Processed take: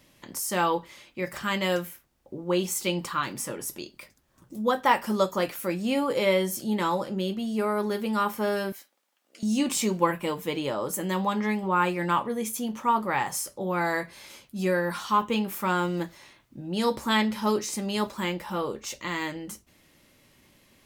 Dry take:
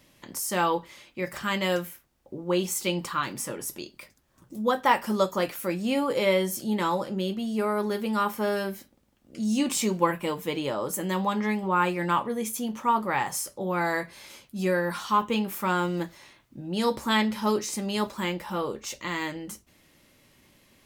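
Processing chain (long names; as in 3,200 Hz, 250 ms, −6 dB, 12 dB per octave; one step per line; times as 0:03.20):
0:08.72–0:09.43: high-pass filter 830 Hz 12 dB per octave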